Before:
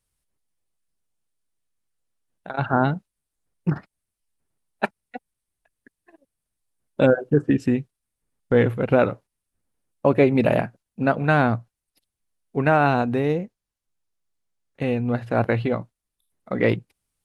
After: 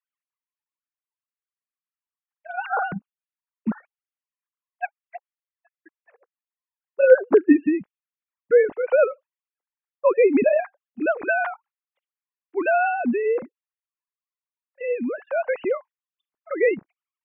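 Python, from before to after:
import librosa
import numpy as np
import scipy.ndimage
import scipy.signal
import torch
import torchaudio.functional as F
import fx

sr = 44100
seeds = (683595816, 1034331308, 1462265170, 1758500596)

y = fx.sine_speech(x, sr)
y = fx.env_lowpass(y, sr, base_hz=2500.0, full_db=-16.0)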